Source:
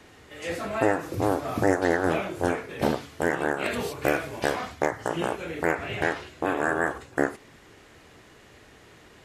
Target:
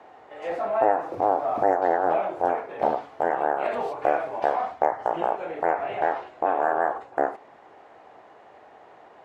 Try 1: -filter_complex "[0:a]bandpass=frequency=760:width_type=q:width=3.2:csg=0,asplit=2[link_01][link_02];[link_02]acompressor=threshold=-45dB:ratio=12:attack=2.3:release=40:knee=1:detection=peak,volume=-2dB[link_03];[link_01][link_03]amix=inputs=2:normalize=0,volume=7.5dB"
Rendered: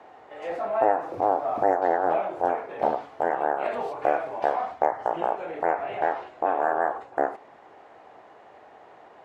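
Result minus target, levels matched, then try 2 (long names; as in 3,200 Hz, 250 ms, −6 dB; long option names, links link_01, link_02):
downward compressor: peak gain reduction +6.5 dB
-filter_complex "[0:a]bandpass=frequency=760:width_type=q:width=3.2:csg=0,asplit=2[link_01][link_02];[link_02]acompressor=threshold=-38dB:ratio=12:attack=2.3:release=40:knee=1:detection=peak,volume=-2dB[link_03];[link_01][link_03]amix=inputs=2:normalize=0,volume=7.5dB"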